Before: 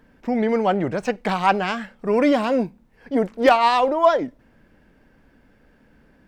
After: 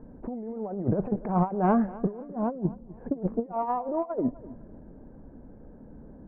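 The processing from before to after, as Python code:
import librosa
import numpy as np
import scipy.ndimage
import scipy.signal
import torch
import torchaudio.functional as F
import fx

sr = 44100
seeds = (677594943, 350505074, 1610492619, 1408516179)

y = scipy.signal.sosfilt(scipy.signal.bessel(4, 610.0, 'lowpass', norm='mag', fs=sr, output='sos'), x)
y = fx.over_compress(y, sr, threshold_db=-29.0, ratio=-0.5)
y = fx.echo_feedback(y, sr, ms=253, feedback_pct=30, wet_db=-18.5)
y = F.gain(torch.from_numpy(y), 2.0).numpy()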